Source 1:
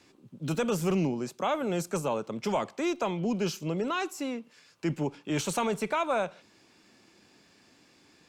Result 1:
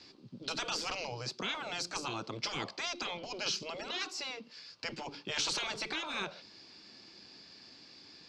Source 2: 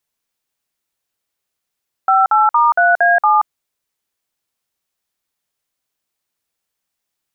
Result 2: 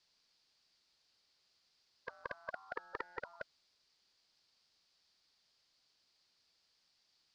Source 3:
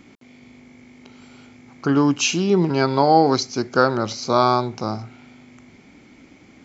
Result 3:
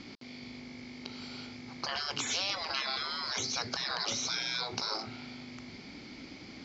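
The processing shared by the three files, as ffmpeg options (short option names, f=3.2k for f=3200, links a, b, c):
-af "lowpass=f=4.7k:t=q:w=5.1,afftfilt=real='re*lt(hypot(re,im),0.1)':imag='im*lt(hypot(re,im),0.1)':win_size=1024:overlap=0.75"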